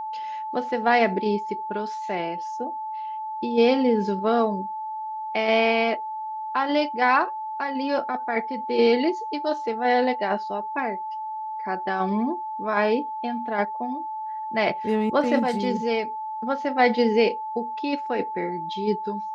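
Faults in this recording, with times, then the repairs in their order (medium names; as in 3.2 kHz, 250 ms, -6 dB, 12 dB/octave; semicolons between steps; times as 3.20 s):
whine 870 Hz -29 dBFS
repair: band-stop 870 Hz, Q 30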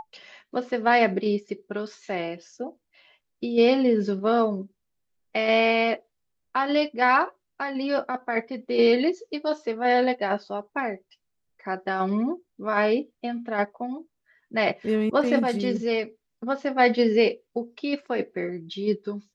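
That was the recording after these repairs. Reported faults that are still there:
nothing left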